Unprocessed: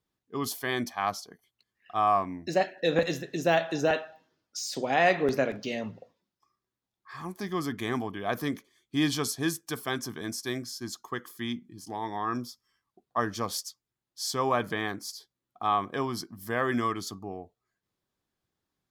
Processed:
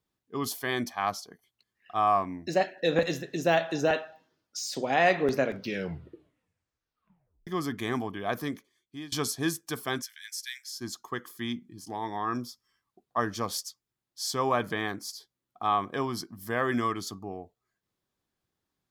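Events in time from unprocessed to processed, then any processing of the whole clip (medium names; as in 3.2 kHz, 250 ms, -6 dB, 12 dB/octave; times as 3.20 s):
5.46 s: tape stop 2.01 s
8.25–9.12 s: fade out, to -23 dB
10.02–10.73 s: steep high-pass 1.7 kHz 48 dB/octave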